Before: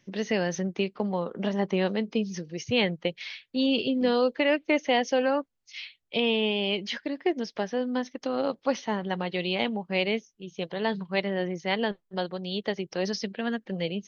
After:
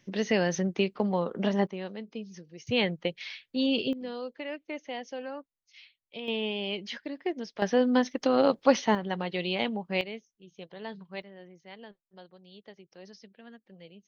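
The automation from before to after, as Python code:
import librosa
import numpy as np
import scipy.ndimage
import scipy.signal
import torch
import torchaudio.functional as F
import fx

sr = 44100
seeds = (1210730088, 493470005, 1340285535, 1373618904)

y = fx.gain(x, sr, db=fx.steps((0.0, 1.0), (1.67, -11.5), (2.67, -2.0), (3.93, -13.5), (6.28, -5.5), (7.62, 5.0), (8.95, -2.0), (10.01, -12.0), (11.22, -20.0)))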